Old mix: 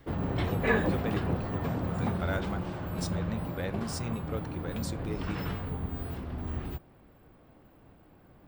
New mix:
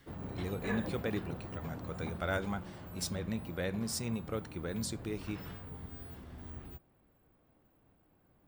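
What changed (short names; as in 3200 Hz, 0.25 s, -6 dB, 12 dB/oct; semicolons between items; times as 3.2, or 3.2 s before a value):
background -12.0 dB; master: add high shelf 8600 Hz +7 dB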